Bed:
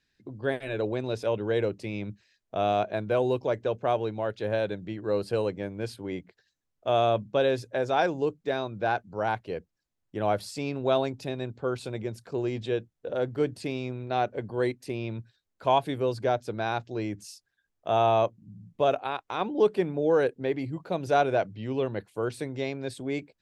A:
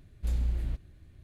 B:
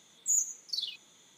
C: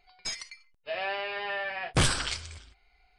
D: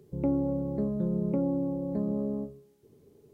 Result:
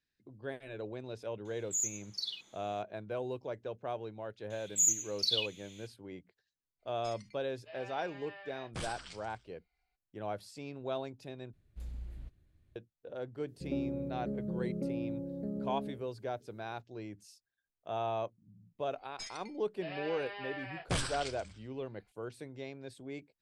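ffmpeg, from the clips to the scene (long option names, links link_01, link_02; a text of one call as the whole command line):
ffmpeg -i bed.wav -i cue0.wav -i cue1.wav -i cue2.wav -i cue3.wav -filter_complex "[2:a]asplit=2[link_01][link_02];[3:a]asplit=2[link_03][link_04];[0:a]volume=-12.5dB[link_05];[link_01]highshelf=frequency=7400:gain=-8[link_06];[link_02]highpass=frequency=2500:width_type=q:width=4.2[link_07];[4:a]asuperstop=centerf=970:order=4:qfactor=2[link_08];[link_05]asplit=2[link_09][link_10];[link_09]atrim=end=11.534[link_11];[1:a]atrim=end=1.23,asetpts=PTS-STARTPTS,volume=-14dB[link_12];[link_10]atrim=start=12.756[link_13];[link_06]atrim=end=1.37,asetpts=PTS-STARTPTS,volume=-2dB,afade=type=in:duration=0.004:curve=hsin,afade=type=out:start_time=1.366:duration=0.004:curve=hsin,adelay=1450[link_14];[link_07]atrim=end=1.37,asetpts=PTS-STARTPTS,volume=-0.5dB,afade=type=in:duration=0.004:curve=hsin,afade=type=out:start_time=1.366:duration=0.004:curve=hsin,adelay=4500[link_15];[link_03]atrim=end=3.18,asetpts=PTS-STARTPTS,volume=-17.5dB,afade=type=in:duration=0.02,afade=type=out:start_time=3.16:duration=0.02,adelay=6790[link_16];[link_08]atrim=end=3.33,asetpts=PTS-STARTPTS,volume=-8dB,afade=type=in:duration=0.004:curve=hsin,afade=type=out:start_time=3.326:duration=0.004:curve=hsin,adelay=594468S[link_17];[link_04]atrim=end=3.18,asetpts=PTS-STARTPTS,volume=-10dB,afade=type=in:duration=0.004:curve=hsin,afade=type=out:start_time=3.176:duration=0.004:curve=hsin,adelay=18940[link_18];[link_11][link_12]acrossfade=duration=0.004:curve1=hsin:curve2=hsin[link_19];[link_19][link_13]acrossfade=duration=0.004:curve1=hsin:curve2=hsin[link_20];[link_20][link_14][link_15][link_16][link_17][link_18]amix=inputs=6:normalize=0" out.wav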